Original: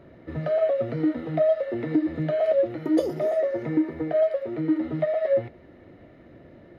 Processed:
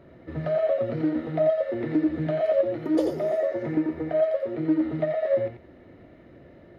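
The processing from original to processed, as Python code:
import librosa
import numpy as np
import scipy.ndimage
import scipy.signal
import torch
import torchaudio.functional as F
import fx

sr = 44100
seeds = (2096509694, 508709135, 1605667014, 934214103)

p1 = x + fx.echo_single(x, sr, ms=88, db=-5.5, dry=0)
p2 = fx.doppler_dist(p1, sr, depth_ms=0.12)
y = p2 * librosa.db_to_amplitude(-1.5)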